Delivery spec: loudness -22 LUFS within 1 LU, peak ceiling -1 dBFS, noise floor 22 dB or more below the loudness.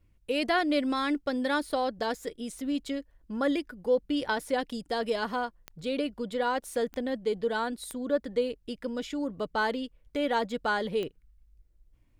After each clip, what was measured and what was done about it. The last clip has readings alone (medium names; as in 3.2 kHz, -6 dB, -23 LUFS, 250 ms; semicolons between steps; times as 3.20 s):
clicks found 4; loudness -31.0 LUFS; peak level -15.0 dBFS; loudness target -22.0 LUFS
-> de-click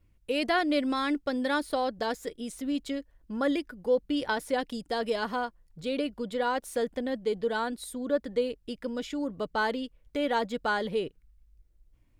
clicks found 0; loudness -31.0 LUFS; peak level -15.0 dBFS; loudness target -22.0 LUFS
-> trim +9 dB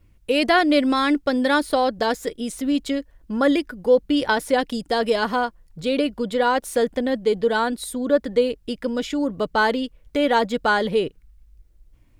loudness -22.0 LUFS; peak level -6.0 dBFS; noise floor -56 dBFS